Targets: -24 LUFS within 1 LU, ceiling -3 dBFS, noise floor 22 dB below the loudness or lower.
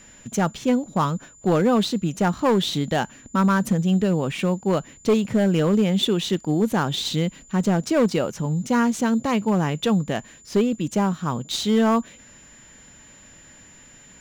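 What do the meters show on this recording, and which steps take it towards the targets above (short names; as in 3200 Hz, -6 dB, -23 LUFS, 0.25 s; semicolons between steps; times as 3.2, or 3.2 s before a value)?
clipped 0.9%; flat tops at -12.5 dBFS; steady tone 7100 Hz; tone level -48 dBFS; loudness -22.5 LUFS; peak -12.5 dBFS; loudness target -24.0 LUFS
-> clip repair -12.5 dBFS; notch 7100 Hz, Q 30; gain -1.5 dB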